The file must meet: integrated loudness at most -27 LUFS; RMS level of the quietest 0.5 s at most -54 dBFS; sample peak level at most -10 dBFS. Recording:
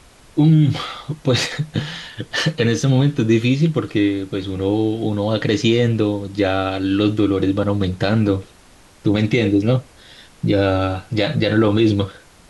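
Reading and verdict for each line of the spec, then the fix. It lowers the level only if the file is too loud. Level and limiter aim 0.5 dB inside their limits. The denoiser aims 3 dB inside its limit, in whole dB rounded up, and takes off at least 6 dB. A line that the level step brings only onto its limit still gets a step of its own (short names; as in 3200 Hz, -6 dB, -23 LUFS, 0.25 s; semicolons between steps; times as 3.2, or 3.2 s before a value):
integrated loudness -18.5 LUFS: fail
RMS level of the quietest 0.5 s -48 dBFS: fail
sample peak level -6.0 dBFS: fail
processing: gain -9 dB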